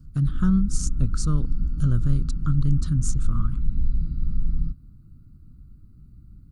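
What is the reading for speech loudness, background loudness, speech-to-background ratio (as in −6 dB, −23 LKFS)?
−26.5 LKFS, −30.0 LKFS, 3.5 dB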